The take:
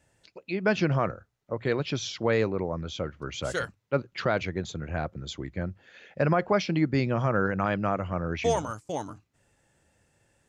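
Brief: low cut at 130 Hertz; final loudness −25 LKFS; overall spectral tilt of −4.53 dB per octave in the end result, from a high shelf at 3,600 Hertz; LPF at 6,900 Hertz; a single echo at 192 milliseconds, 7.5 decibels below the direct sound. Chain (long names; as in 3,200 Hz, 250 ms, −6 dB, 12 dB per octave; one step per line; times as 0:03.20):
high-pass filter 130 Hz
low-pass filter 6,900 Hz
high-shelf EQ 3,600 Hz +3.5 dB
single-tap delay 192 ms −7.5 dB
level +3.5 dB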